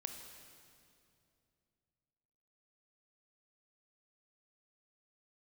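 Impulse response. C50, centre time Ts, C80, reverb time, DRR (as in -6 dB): 5.5 dB, 49 ms, 6.5 dB, 2.6 s, 5.0 dB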